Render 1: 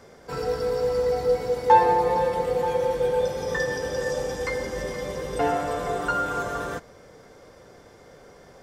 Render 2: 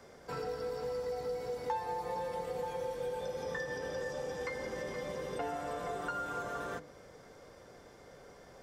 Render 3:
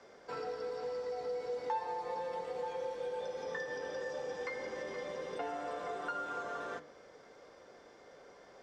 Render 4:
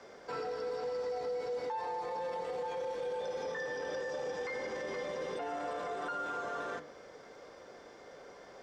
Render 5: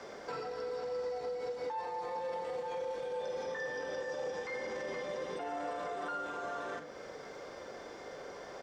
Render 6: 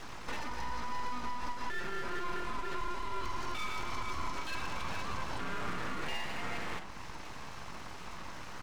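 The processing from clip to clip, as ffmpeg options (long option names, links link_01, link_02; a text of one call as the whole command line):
ffmpeg -i in.wav -filter_complex "[0:a]bandreject=frequency=50:width_type=h:width=6,bandreject=frequency=100:width_type=h:width=6,bandreject=frequency=150:width_type=h:width=6,bandreject=frequency=200:width_type=h:width=6,bandreject=frequency=250:width_type=h:width=6,bandreject=frequency=300:width_type=h:width=6,bandreject=frequency=350:width_type=h:width=6,bandreject=frequency=400:width_type=h:width=6,bandreject=frequency=450:width_type=h:width=6,bandreject=frequency=500:width_type=h:width=6,acrossover=split=110|4100[link_01][link_02][link_03];[link_01]acompressor=threshold=-54dB:ratio=4[link_04];[link_02]acompressor=threshold=-31dB:ratio=4[link_05];[link_03]acompressor=threshold=-54dB:ratio=4[link_06];[link_04][link_05][link_06]amix=inputs=3:normalize=0,volume=-5dB" out.wav
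ffmpeg -i in.wav -filter_complex "[0:a]acrossover=split=240 7100:gain=0.224 1 0.0708[link_01][link_02][link_03];[link_01][link_02][link_03]amix=inputs=3:normalize=0,flanger=delay=9.1:depth=5.5:regen=87:speed=0.34:shape=triangular,volume=3.5dB" out.wav
ffmpeg -i in.wav -af "alimiter=level_in=11dB:limit=-24dB:level=0:latency=1:release=21,volume=-11dB,volume=4.5dB" out.wav
ffmpeg -i in.wav -filter_complex "[0:a]acompressor=threshold=-49dB:ratio=2,asplit=2[link_01][link_02];[link_02]adelay=44,volume=-8.5dB[link_03];[link_01][link_03]amix=inputs=2:normalize=0,volume=6dB" out.wav
ffmpeg -i in.wav -af "aeval=exprs='abs(val(0))':channel_layout=same,volume=4.5dB" out.wav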